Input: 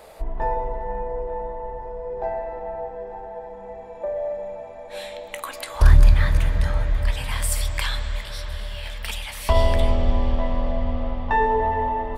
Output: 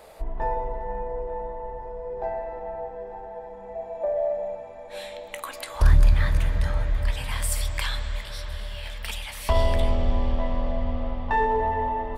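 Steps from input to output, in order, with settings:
0:03.75–0:04.55: parametric band 680 Hz +11 dB 0.3 octaves
in parallel at −10 dB: gain into a clipping stage and back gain 14.5 dB
on the sum: level −5 dB

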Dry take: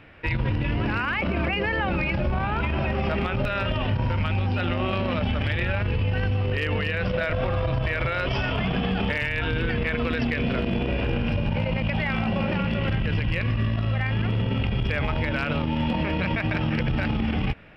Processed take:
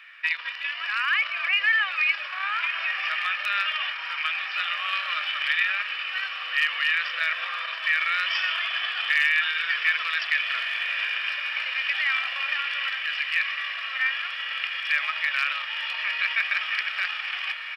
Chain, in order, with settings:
high-pass filter 1,400 Hz 24 dB per octave
comb filter 1.7 ms, depth 45%
feedback delay with all-pass diffusion 1,586 ms, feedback 65%, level −9 dB
level +5.5 dB

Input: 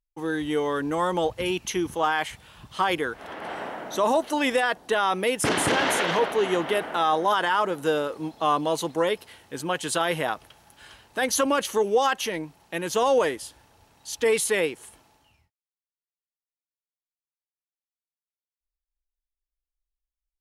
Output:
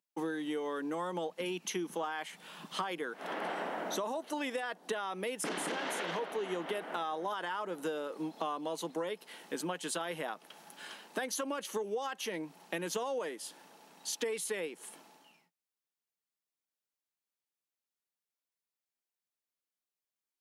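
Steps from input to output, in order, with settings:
downward compressor 10 to 1, threshold −35 dBFS, peak gain reduction 18 dB
elliptic high-pass filter 170 Hz
level +2 dB

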